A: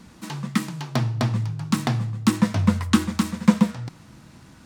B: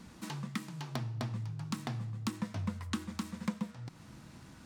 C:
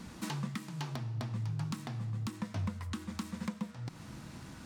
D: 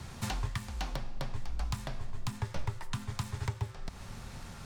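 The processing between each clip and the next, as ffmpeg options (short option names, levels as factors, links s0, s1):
-af "acompressor=threshold=0.02:ratio=2.5,volume=0.562"
-af "alimiter=level_in=2.11:limit=0.0631:level=0:latency=1:release=343,volume=0.473,volume=1.78"
-af "afreqshift=-100,volume=1.5"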